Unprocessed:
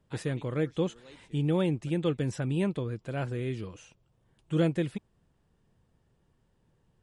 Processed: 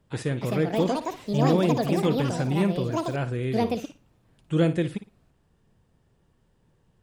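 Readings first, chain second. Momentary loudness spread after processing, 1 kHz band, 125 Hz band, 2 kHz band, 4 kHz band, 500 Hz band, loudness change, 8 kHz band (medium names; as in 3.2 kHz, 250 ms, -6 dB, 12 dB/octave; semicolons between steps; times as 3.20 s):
8 LU, +13.0 dB, +4.5 dB, +5.5 dB, +7.0 dB, +6.5 dB, +5.5 dB, +7.0 dB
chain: ever faster or slower copies 335 ms, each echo +6 st, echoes 2; flutter echo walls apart 9.6 m, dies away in 0.26 s; trim +4 dB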